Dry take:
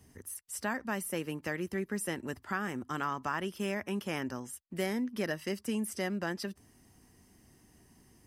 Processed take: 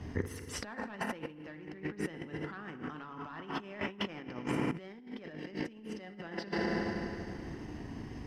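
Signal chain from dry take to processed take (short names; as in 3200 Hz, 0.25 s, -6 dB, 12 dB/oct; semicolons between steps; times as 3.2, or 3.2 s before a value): air absorption 230 m; FDN reverb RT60 2.5 s, low-frequency decay 1.1×, high-frequency decay 0.9×, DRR 5 dB; dynamic EQ 3600 Hz, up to +4 dB, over -55 dBFS, Q 1.1; in parallel at -3.5 dB: sine folder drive 4 dB, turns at -19.5 dBFS; on the sum: transient shaper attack -1 dB, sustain -5 dB; limiter -24 dBFS, peak gain reduction 7.5 dB; negative-ratio compressor -40 dBFS, ratio -0.5; gain +2 dB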